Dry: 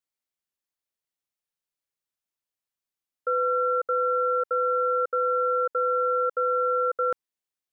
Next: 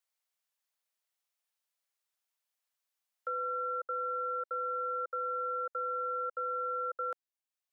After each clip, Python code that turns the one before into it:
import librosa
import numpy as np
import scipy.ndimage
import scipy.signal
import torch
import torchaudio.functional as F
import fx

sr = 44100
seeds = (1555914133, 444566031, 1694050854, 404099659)

y = scipy.signal.sosfilt(scipy.signal.butter(4, 550.0, 'highpass', fs=sr, output='sos'), x)
y = fx.band_squash(y, sr, depth_pct=40)
y = y * librosa.db_to_amplitude(-9.0)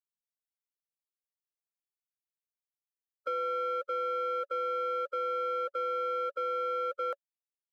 y = fx.bin_expand(x, sr, power=2.0)
y = fx.peak_eq(y, sr, hz=560.0, db=11.0, octaves=0.25)
y = fx.leveller(y, sr, passes=1)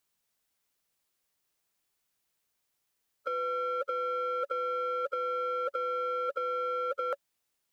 y = fx.over_compress(x, sr, threshold_db=-40.0, ratio=-1.0)
y = y * librosa.db_to_amplitude(8.0)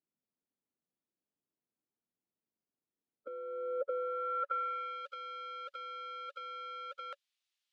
y = fx.filter_sweep_bandpass(x, sr, from_hz=250.0, to_hz=3400.0, start_s=3.43, end_s=5.06, q=1.6)
y = y * librosa.db_to_amplitude(1.0)